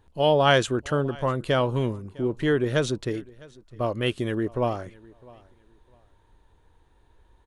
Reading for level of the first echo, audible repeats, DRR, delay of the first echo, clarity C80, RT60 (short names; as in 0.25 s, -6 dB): -23.5 dB, 1, none, 0.655 s, none, none